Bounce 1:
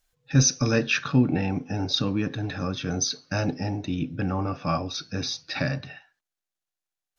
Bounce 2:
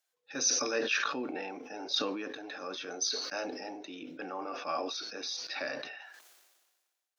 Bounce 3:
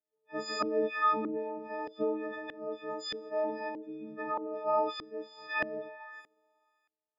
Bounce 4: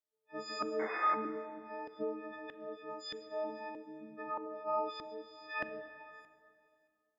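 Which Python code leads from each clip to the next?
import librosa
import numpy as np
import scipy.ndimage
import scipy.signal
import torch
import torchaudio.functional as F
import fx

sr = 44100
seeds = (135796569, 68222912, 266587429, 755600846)

y1 = scipy.signal.sosfilt(scipy.signal.butter(4, 360.0, 'highpass', fs=sr, output='sos'), x)
y1 = fx.sustainer(y1, sr, db_per_s=38.0)
y1 = F.gain(torch.from_numpy(y1), -7.0).numpy()
y2 = fx.freq_snap(y1, sr, grid_st=6)
y2 = fx.filter_lfo_lowpass(y2, sr, shape='saw_up', hz=1.6, low_hz=320.0, high_hz=1900.0, q=1.5)
y3 = fx.spec_paint(y2, sr, seeds[0], shape='noise', start_s=0.79, length_s=0.36, low_hz=330.0, high_hz=2200.0, level_db=-36.0)
y3 = fx.rev_plate(y3, sr, seeds[1], rt60_s=2.4, hf_ratio=0.7, predelay_ms=0, drr_db=10.5)
y3 = F.gain(torch.from_numpy(y3), -6.0).numpy()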